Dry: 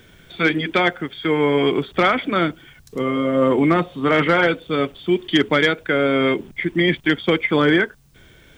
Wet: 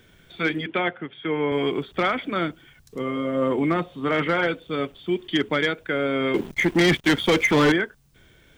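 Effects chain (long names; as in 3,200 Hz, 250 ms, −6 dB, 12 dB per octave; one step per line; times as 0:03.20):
0:00.66–0:01.52: elliptic band-pass filter 100–3,100 Hz, stop band 40 dB
0:06.34–0:07.72: leveller curve on the samples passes 3
level −6 dB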